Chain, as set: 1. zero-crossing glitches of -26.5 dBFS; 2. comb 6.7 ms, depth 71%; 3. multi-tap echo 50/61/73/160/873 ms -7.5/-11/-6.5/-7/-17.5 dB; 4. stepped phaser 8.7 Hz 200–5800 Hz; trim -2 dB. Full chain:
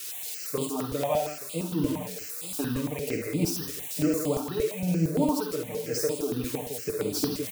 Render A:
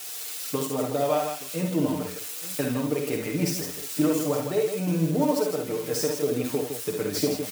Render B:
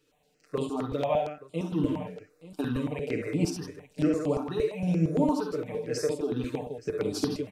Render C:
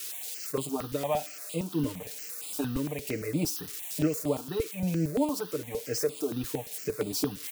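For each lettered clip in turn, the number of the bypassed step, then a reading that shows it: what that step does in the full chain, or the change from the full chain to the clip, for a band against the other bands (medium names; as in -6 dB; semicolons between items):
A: 4, loudness change +2.5 LU; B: 1, distortion -10 dB; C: 3, loudness change -2.5 LU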